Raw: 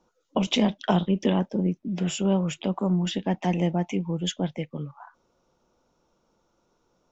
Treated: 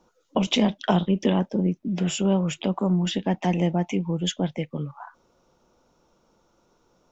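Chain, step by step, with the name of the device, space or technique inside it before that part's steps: parallel compression (in parallel at -2 dB: compressor, threshold -34 dBFS, peak gain reduction 15.5 dB)

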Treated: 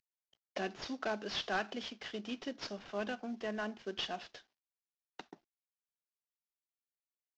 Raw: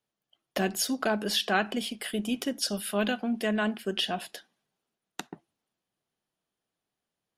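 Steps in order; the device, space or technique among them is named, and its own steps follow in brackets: early wireless headset (HPF 260 Hz 12 dB/oct; CVSD 32 kbps); 2.66–3.84 dynamic EQ 3900 Hz, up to -5 dB, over -49 dBFS, Q 0.75; gain -8 dB

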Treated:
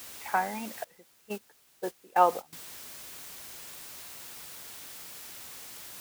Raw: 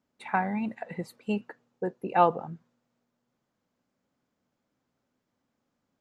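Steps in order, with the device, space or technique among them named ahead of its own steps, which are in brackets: wax cylinder (BPF 360–2700 Hz; wow and flutter; white noise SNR 10 dB); HPF 40 Hz; 0.84–2.53 gate -32 dBFS, range -18 dB

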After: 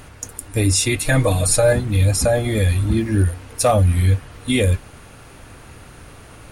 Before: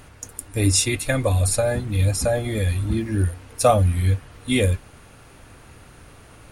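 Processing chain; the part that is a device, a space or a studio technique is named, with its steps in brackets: clipper into limiter (hard clip -8 dBFS, distortion -28 dB; limiter -13 dBFS, peak gain reduction 5 dB); 1.04–1.73 comb 6.4 ms, depth 84%; gain +5 dB

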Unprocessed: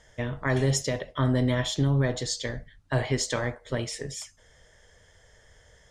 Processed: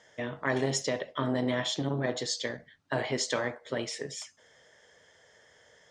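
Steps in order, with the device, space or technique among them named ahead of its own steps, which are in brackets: public-address speaker with an overloaded transformer (core saturation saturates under 240 Hz; BPF 220–6700 Hz)

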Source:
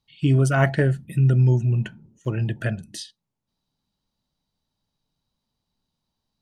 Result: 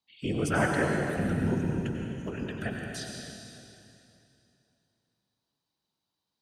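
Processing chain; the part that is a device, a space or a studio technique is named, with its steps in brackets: whispering ghost (whisperiser; HPF 380 Hz 6 dB/oct; reverb RT60 2.9 s, pre-delay 86 ms, DRR 0 dB); gain -5 dB

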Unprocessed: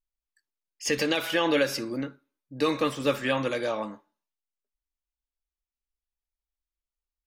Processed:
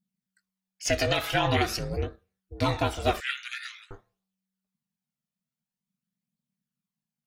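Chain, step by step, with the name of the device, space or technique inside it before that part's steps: 3.2–3.91 steep high-pass 1500 Hz 96 dB/oct; alien voice (ring modulator 190 Hz; flange 0.47 Hz, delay 0.2 ms, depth 1.5 ms, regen +40%); gain +7 dB

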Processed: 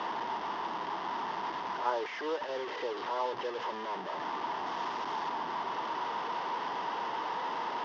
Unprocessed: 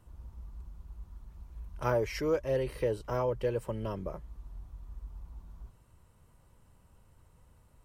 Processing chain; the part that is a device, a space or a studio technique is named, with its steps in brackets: digital answering machine (BPF 310–3300 Hz; delta modulation 32 kbps, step -29 dBFS; speaker cabinet 380–4400 Hz, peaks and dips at 550 Hz -8 dB, 930 Hz +8 dB, 1400 Hz -4 dB, 2400 Hz -10 dB, 4100 Hz -10 dB); 4.66–5.29 high shelf 6400 Hz +10 dB

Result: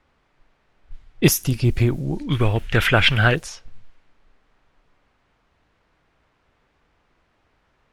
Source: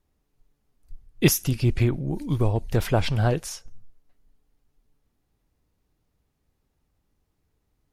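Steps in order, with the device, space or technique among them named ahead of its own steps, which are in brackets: cassette deck with a dynamic noise filter (white noise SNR 32 dB; low-pass opened by the level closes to 1700 Hz, open at -19.5 dBFS); 2.29–3.35 band shelf 2100 Hz +14 dB; gain +3 dB

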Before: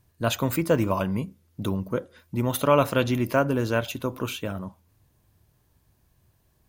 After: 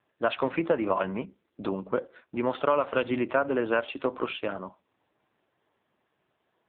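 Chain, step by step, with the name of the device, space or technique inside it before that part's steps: voicemail (BPF 370–3100 Hz; compressor 8:1, threshold -24 dBFS, peak gain reduction 10 dB; gain +5 dB; AMR-NB 5.9 kbps 8000 Hz)

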